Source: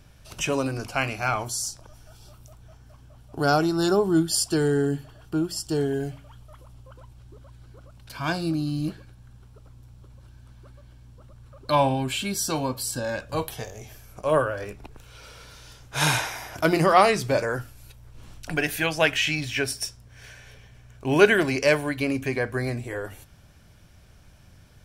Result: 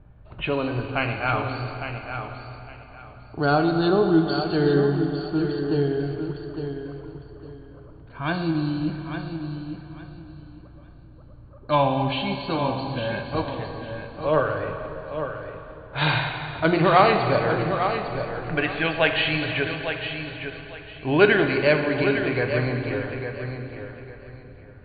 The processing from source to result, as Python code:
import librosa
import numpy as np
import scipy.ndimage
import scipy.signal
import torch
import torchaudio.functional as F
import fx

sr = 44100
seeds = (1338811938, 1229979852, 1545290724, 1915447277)

y = fx.env_lowpass(x, sr, base_hz=1100.0, full_db=-19.5)
y = fx.brickwall_lowpass(y, sr, high_hz=4600.0)
y = fx.low_shelf(y, sr, hz=160.0, db=3.0)
y = fx.echo_feedback(y, sr, ms=855, feedback_pct=23, wet_db=-8.5)
y = fx.rev_plate(y, sr, seeds[0], rt60_s=3.6, hf_ratio=0.75, predelay_ms=0, drr_db=5.0)